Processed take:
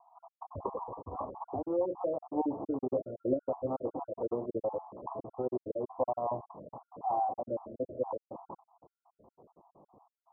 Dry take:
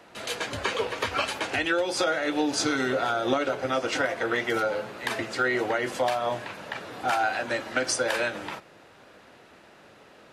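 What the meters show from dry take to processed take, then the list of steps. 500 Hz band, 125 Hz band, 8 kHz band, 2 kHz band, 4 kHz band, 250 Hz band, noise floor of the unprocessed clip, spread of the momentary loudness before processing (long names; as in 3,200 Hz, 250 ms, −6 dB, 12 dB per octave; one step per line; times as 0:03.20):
−6.0 dB, −6.0 dB, below −40 dB, below −40 dB, below −40 dB, −6.0 dB, −53 dBFS, 7 LU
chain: time-frequency cells dropped at random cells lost 52%
Butterworth low-pass 1,100 Hz 96 dB per octave
level −3.5 dB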